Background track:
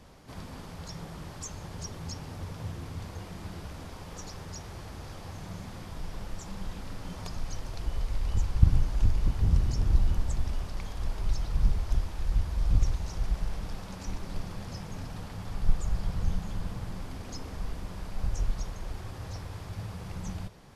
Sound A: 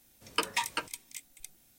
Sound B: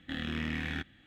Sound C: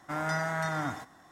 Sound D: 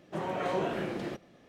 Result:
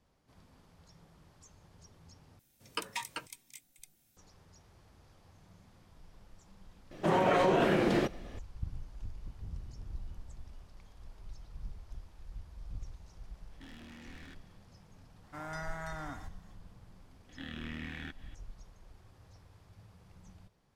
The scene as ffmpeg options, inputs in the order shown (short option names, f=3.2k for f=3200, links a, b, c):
-filter_complex "[2:a]asplit=2[a][b];[0:a]volume=-19dB[c];[1:a]equalizer=f=130:w=1.5:g=6.5[d];[4:a]alimiter=level_in=25.5dB:limit=-1dB:release=50:level=0:latency=1[e];[a]asoftclip=type=tanh:threshold=-39dB[f];[b]acompressor=mode=upward:threshold=-41dB:ratio=2.5:attack=3.2:release=140:knee=2.83:detection=peak[g];[c]asplit=2[h][i];[h]atrim=end=2.394[j];[d]atrim=end=1.78,asetpts=PTS-STARTPTS,volume=-7.5dB[k];[i]atrim=start=4.166[l];[e]atrim=end=1.48,asetpts=PTS-STARTPTS,volume=-17dB,afade=t=in:d=0.004:c=hsin,afade=t=out:st=1.476:d=0.004:c=hsin,adelay=6910[m];[f]atrim=end=1.06,asetpts=PTS-STARTPTS,volume=-9.5dB,afade=t=in:d=0.004:c=hsin,afade=t=out:st=1.056:d=0.004:c=hsin,adelay=13520[n];[3:a]atrim=end=1.31,asetpts=PTS-STARTPTS,volume=-10.5dB,afade=t=in:d=0.004:c=hsin,afade=t=out:st=1.306:d=0.004:c=hsin,adelay=672084S[o];[g]atrim=end=1.06,asetpts=PTS-STARTPTS,volume=-7.5dB,afade=t=in:d=0.004:c=hsin,afade=t=out:st=1.056:d=0.004:c=hsin,adelay=17290[p];[j][k]acrossfade=d=0.004:c1=hsin:c2=hsin[q];[q][l]acrossfade=d=0.004:c1=hsin:c2=hsin[r];[r][m][n][o][p]amix=inputs=5:normalize=0"